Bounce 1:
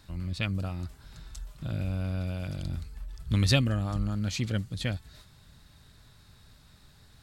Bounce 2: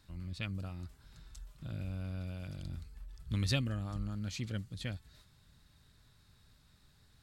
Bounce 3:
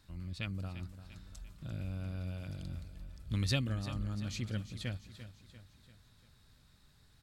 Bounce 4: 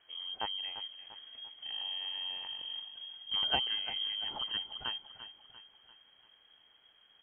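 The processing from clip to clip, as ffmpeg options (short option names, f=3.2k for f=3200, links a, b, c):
-af "equalizer=f=690:w=1.5:g=-2.5,volume=-8.5dB"
-af "aecho=1:1:344|688|1032|1376|1720:0.224|0.112|0.056|0.028|0.014"
-af "lowpass=f=2.8k:t=q:w=0.5098,lowpass=f=2.8k:t=q:w=0.6013,lowpass=f=2.8k:t=q:w=0.9,lowpass=f=2.8k:t=q:w=2.563,afreqshift=-3300,highshelf=f=2.1k:g=-11,volume=7.5dB"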